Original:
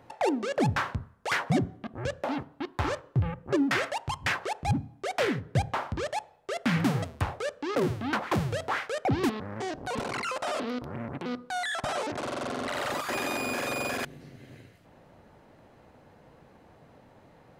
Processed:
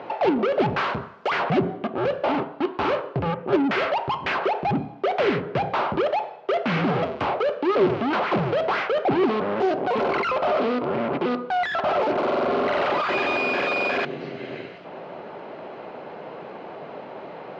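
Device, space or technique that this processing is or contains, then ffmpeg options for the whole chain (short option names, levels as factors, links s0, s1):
overdrive pedal into a guitar cabinet: -filter_complex "[0:a]asettb=1/sr,asplit=3[s0][s1][s2];[s0]atrim=end=0.784[s3];[s1]atrim=start=0.78:end=1.29,asetpts=PTS-STARTPTS,afade=t=in:d=0.004:c=qsin,afade=t=out:st=0.506:d=0.004:c=qsin,aemphasis=mode=production:type=75kf[s4];[s2]atrim=start=1.286[s5];[s3][s4]acrossfade=d=0.004:c1=hsin:c2=qsin[s6];[s6][s5]acrossfade=d=0.004:c1=qsin:c2=hsin,asplit=2[s7][s8];[s8]highpass=f=720:p=1,volume=31.6,asoftclip=type=tanh:threshold=0.2[s9];[s7][s9]amix=inputs=2:normalize=0,lowpass=f=6300:p=1,volume=0.501,highpass=93,equalizer=f=100:t=q:w=4:g=-6,equalizer=f=180:t=q:w=4:g=4,equalizer=f=390:t=q:w=4:g=8,equalizer=f=630:t=q:w=4:g=4,equalizer=f=1800:t=q:w=4:g=-6,equalizer=f=3600:t=q:w=4:g=-4,lowpass=f=3800:w=0.5412,lowpass=f=3800:w=1.3066,volume=0.75"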